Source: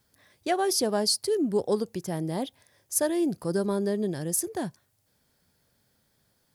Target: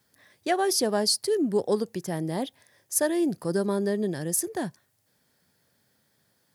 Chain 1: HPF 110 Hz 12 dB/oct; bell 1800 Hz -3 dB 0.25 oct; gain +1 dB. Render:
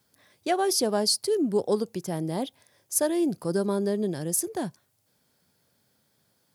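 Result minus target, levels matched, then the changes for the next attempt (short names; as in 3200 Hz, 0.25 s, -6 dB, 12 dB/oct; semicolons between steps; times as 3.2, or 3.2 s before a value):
2000 Hz band -3.5 dB
change: bell 1800 Hz +4.5 dB 0.25 oct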